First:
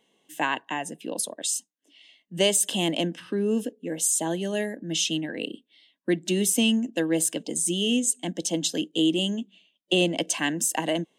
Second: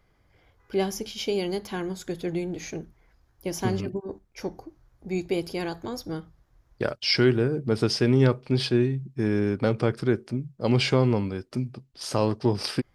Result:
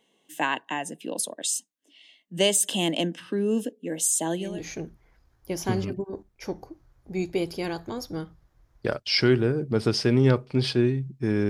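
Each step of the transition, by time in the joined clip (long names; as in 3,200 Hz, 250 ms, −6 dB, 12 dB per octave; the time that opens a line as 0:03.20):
first
0:04.49: continue with second from 0:02.45, crossfade 0.26 s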